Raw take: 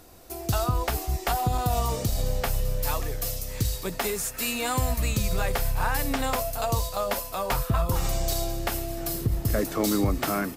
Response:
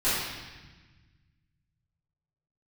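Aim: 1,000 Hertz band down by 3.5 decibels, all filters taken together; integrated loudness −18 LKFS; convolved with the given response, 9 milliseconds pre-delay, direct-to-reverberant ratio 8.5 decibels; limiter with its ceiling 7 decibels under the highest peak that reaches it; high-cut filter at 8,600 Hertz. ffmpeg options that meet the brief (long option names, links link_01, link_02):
-filter_complex "[0:a]lowpass=8600,equalizer=frequency=1000:width_type=o:gain=-5,alimiter=limit=-21.5dB:level=0:latency=1,asplit=2[link_01][link_02];[1:a]atrim=start_sample=2205,adelay=9[link_03];[link_02][link_03]afir=irnorm=-1:irlink=0,volume=-22dB[link_04];[link_01][link_04]amix=inputs=2:normalize=0,volume=14dB"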